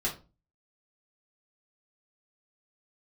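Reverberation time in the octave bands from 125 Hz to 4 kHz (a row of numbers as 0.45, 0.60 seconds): 0.50, 0.45, 0.35, 0.30, 0.25, 0.25 seconds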